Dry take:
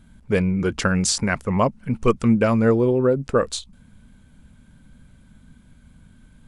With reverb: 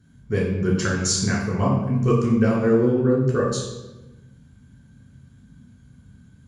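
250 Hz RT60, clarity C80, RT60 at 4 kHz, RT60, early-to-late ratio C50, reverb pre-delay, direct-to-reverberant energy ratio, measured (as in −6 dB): 1.4 s, 5.5 dB, 0.75 s, 1.1 s, 3.0 dB, 3 ms, −4.0 dB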